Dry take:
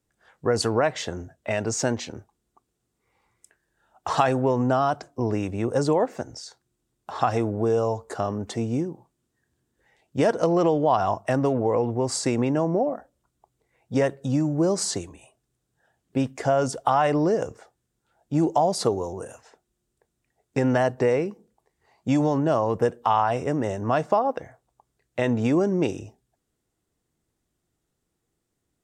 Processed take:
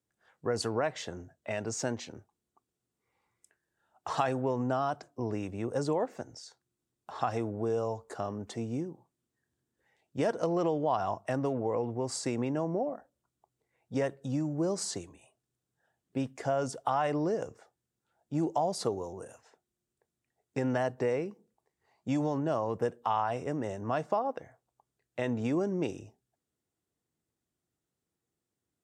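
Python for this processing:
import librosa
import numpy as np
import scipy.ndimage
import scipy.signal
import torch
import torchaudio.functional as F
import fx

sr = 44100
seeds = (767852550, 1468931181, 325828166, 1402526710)

y = scipy.signal.sosfilt(scipy.signal.butter(2, 77.0, 'highpass', fs=sr, output='sos'), x)
y = y * librosa.db_to_amplitude(-8.5)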